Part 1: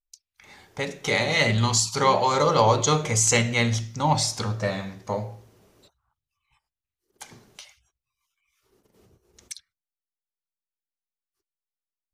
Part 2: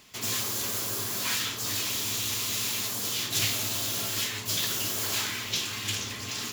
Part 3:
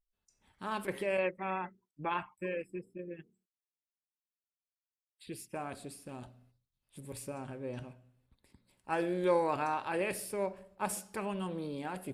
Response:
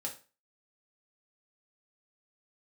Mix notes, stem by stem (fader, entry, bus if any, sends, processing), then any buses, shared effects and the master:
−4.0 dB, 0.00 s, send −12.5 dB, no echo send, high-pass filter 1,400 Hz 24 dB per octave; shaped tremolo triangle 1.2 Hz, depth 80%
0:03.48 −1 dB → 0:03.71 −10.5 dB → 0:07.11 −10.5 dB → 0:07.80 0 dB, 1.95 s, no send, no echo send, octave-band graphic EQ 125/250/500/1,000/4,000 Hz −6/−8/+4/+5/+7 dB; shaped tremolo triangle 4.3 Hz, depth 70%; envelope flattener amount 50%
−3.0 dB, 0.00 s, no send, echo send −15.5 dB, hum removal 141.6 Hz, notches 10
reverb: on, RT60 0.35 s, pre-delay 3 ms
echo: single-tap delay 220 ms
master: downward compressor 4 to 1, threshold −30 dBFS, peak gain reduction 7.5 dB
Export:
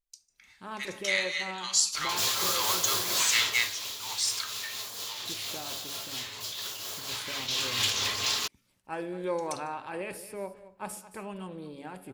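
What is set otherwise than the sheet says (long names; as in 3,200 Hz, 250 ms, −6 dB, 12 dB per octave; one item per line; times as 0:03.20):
stem 1: send −12.5 dB → −2.5 dB
master: missing downward compressor 4 to 1, threshold −30 dBFS, peak gain reduction 7.5 dB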